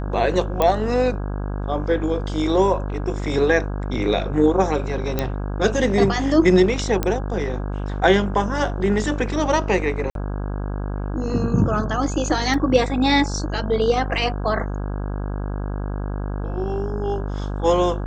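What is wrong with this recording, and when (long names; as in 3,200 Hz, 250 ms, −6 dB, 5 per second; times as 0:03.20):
mains buzz 50 Hz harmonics 33 −26 dBFS
0:00.62: click −6 dBFS
0:05.19: click −7 dBFS
0:07.03: click −7 dBFS
0:10.10–0:10.15: drop-out 52 ms
0:12.54: drop-out 2.5 ms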